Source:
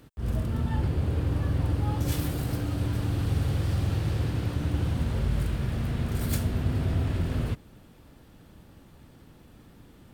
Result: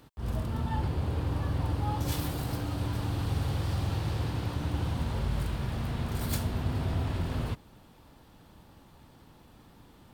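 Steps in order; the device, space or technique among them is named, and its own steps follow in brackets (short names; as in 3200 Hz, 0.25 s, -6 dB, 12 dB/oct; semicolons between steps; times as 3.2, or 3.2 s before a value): bell 920 Hz +8 dB 0.86 oct; presence and air boost (bell 4100 Hz +4.5 dB 1.2 oct; high shelf 11000 Hz +3.5 dB); gain -4 dB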